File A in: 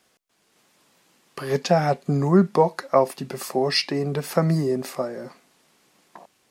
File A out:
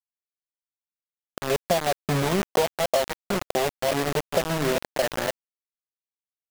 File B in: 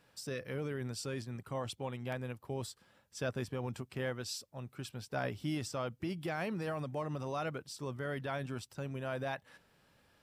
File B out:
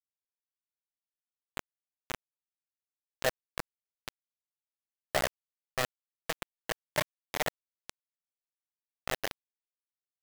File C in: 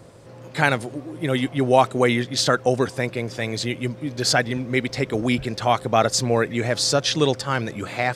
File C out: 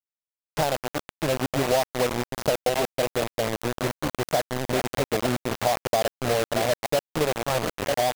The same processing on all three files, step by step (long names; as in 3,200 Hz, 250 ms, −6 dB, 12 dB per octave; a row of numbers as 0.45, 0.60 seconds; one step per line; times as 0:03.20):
delay that plays each chunk backwards 572 ms, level −11 dB
drawn EQ curve 360 Hz 0 dB, 630 Hz +12 dB, 2,600 Hz −22 dB
downward compressor 5 to 1, threshold −20 dBFS
bit reduction 4 bits
level −1.5 dB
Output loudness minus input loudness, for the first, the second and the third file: −3.0, +3.0, −4.5 LU